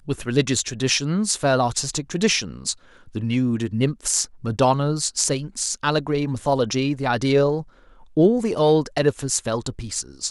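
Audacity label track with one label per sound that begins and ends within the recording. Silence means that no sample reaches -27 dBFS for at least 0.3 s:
3.150000	7.610000	sound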